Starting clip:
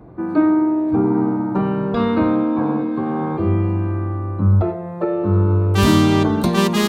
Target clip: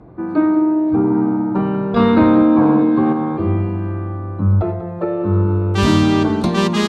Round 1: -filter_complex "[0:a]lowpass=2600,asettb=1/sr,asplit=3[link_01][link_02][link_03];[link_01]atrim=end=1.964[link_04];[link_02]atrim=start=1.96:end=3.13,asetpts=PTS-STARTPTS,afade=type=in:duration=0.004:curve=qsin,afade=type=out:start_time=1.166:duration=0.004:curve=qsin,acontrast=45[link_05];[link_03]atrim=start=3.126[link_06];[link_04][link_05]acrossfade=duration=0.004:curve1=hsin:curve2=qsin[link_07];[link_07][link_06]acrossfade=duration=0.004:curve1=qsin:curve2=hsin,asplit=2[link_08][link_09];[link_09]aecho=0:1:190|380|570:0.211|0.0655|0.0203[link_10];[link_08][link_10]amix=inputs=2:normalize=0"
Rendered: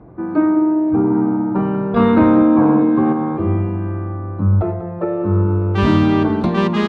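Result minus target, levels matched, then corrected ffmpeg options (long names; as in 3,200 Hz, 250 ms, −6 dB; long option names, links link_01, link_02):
8,000 Hz band −15.0 dB
-filter_complex "[0:a]lowpass=7300,asettb=1/sr,asplit=3[link_01][link_02][link_03];[link_01]atrim=end=1.964[link_04];[link_02]atrim=start=1.96:end=3.13,asetpts=PTS-STARTPTS,afade=type=in:duration=0.004:curve=qsin,afade=type=out:start_time=1.166:duration=0.004:curve=qsin,acontrast=45[link_05];[link_03]atrim=start=3.126[link_06];[link_04][link_05]acrossfade=duration=0.004:curve1=hsin:curve2=qsin[link_07];[link_07][link_06]acrossfade=duration=0.004:curve1=qsin:curve2=hsin,asplit=2[link_08][link_09];[link_09]aecho=0:1:190|380|570:0.211|0.0655|0.0203[link_10];[link_08][link_10]amix=inputs=2:normalize=0"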